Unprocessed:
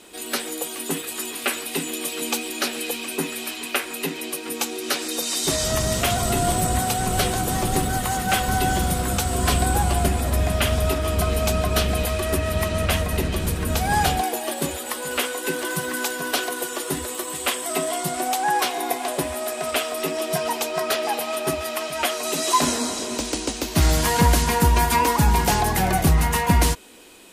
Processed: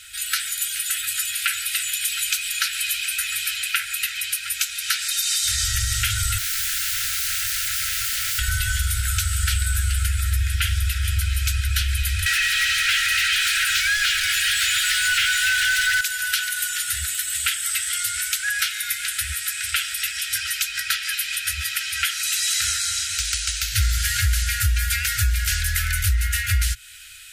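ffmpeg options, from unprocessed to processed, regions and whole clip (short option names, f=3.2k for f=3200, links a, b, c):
-filter_complex "[0:a]asettb=1/sr,asplit=3[a][b][c];[a]atrim=end=6.384[d];[b]atrim=start=6.38:end=8.39,asetpts=PTS-STARTPTS,afade=t=in:d=0.004:c=qsin,afade=t=out:st=2.006:d=0.004:c=qsin,highshelf=f=5.8k:g=-6,aeval=exprs='(mod(20*val(0)+1,2)-1)/20':c=same[e];[c]atrim=start=8.386[f];[d][e]acrossfade=d=0.004:c1=hsin:c2=qsin[g];[g][f]acrossfade=d=0.004:c1=qsin:c2=hsin,asettb=1/sr,asplit=3[h][i][j];[h]atrim=end=12.264[k];[i]atrim=start=12.26:end=16.01,asetpts=PTS-STARTPTS,afade=t=in:d=0.004:c=qsin,afade=t=out:st=3.746:d=0.004:c=qsin,highpass=1.1k,acrossover=split=6700[l][m];[m]acompressor=threshold=-41dB:ratio=4:attack=1:release=60[n];[l][n]amix=inputs=2:normalize=0,asplit=2[o][p];[p]highpass=f=720:p=1,volume=29dB,asoftclip=type=tanh:threshold=-12dB[q];[o][q]amix=inputs=2:normalize=0,lowpass=f=5.1k:p=1,volume=-6dB[r];[j]atrim=start=16.006[s];[k][r]acrossfade=d=0.004:c1=hsin:c2=qsin[t];[t][s]acrossfade=d=0.004:c1=qsin:c2=hsin,afftfilt=real='re*(1-between(b*sr/4096,110,1300))':imag='im*(1-between(b*sr/4096,110,1300))':win_size=4096:overlap=0.75,acompressor=threshold=-27dB:ratio=3,volume=7dB"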